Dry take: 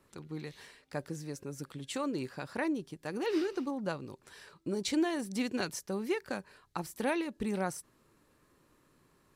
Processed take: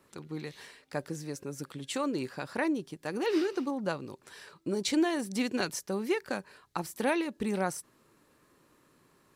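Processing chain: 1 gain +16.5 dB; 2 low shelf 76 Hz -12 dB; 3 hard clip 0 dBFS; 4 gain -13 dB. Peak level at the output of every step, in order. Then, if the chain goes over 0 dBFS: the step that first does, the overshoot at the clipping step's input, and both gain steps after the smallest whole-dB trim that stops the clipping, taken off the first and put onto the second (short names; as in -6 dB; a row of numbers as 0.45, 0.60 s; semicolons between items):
-3.5, -3.5, -3.5, -16.5 dBFS; no overload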